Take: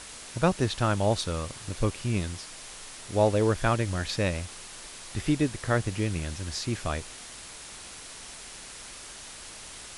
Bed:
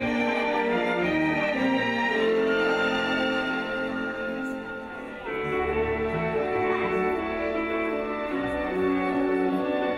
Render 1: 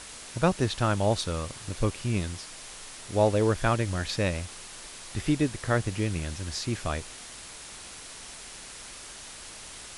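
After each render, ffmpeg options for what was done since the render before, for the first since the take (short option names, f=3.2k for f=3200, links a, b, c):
-af anull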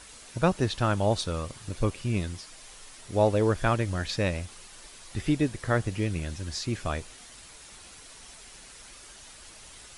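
-af "afftdn=nr=7:nf=-44"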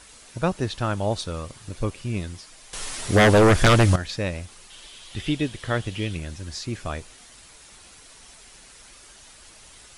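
-filter_complex "[0:a]asettb=1/sr,asplit=3[a][b][c];[a]atrim=end=2.734[d];[b]atrim=start=2.73:end=3.96,asetpts=PTS-STARTPTS,afade=t=in:d=0.004:c=qsin,afade=t=out:st=1.226:d=0.004:c=qsin,aeval=exprs='0.299*sin(PI/2*3.55*val(0)/0.299)':c=same[e];[c]atrim=start=3.956[f];[d][e]acrossfade=d=0.004:c1=hsin:c2=qsin[g];[g][f]acrossfade=d=0.004:c1=qsin:c2=hsin,asettb=1/sr,asplit=3[h][i][j];[h]atrim=end=4.704[k];[i]atrim=start=4.7:end=6.17,asetpts=PTS-STARTPTS,afade=t=in:d=0.004:c=qsin,afade=t=out:st=1.466:d=0.004:c=qsin,equalizer=f=3.2k:t=o:w=0.62:g=12[l];[j]atrim=start=6.166[m];[k][l]acrossfade=d=0.004:c1=hsin:c2=qsin[n];[n][m]acrossfade=d=0.004:c1=qsin:c2=hsin"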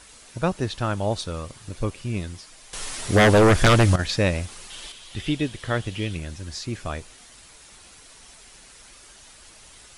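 -filter_complex "[0:a]asplit=3[a][b][c];[a]atrim=end=3.992[d];[b]atrim=start=3.988:end=4.922,asetpts=PTS-STARTPTS,volume=6dB[e];[c]atrim=start=4.918[f];[d][e]acrossfade=d=0.004:c1=hsin:c2=hsin[g];[g][f]acrossfade=d=0.004:c1=hsin:c2=hsin"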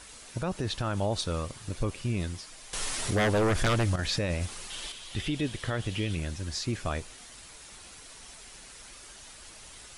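-af "acompressor=threshold=-19dB:ratio=6,alimiter=limit=-20.5dB:level=0:latency=1:release=29"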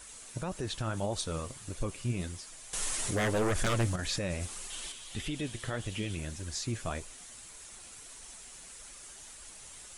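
-af "aexciter=amount=2.2:drive=5.1:freq=6.6k,flanger=delay=1.5:depth=7.6:regen=59:speed=1.7:shape=triangular"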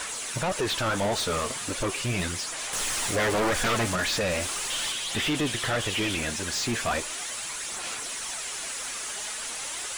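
-filter_complex "[0:a]aphaser=in_gain=1:out_gain=1:delay=4.8:decay=0.33:speed=0.38:type=sinusoidal,asplit=2[a][b];[b]highpass=f=720:p=1,volume=28dB,asoftclip=type=tanh:threshold=-18dB[c];[a][c]amix=inputs=2:normalize=0,lowpass=f=4.1k:p=1,volume=-6dB"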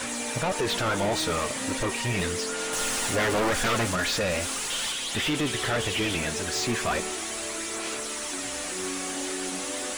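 -filter_complex "[1:a]volume=-10.5dB[a];[0:a][a]amix=inputs=2:normalize=0"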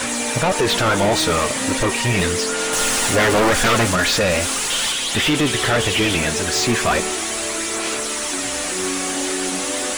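-af "volume=9dB"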